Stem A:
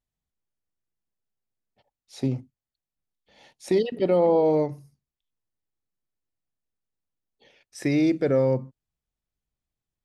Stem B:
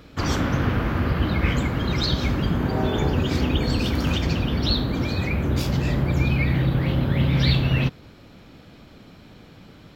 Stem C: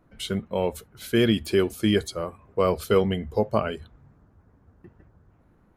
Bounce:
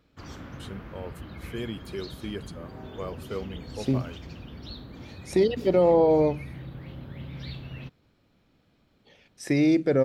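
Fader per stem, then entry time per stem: +0.5, −19.0, −14.0 decibels; 1.65, 0.00, 0.40 seconds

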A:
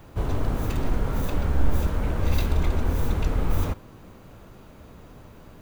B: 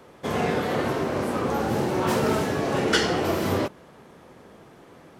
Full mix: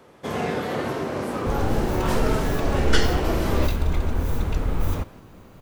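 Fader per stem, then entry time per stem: 0.0, −1.5 decibels; 1.30, 0.00 seconds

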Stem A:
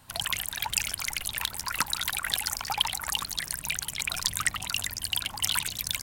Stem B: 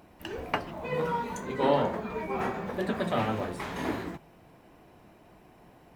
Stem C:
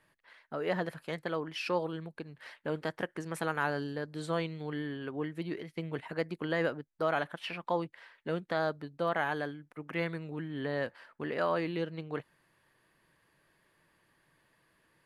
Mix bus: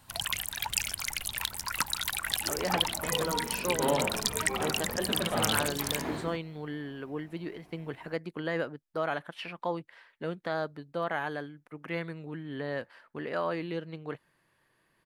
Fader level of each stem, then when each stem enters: −2.5, −3.5, −1.0 decibels; 0.00, 2.20, 1.95 seconds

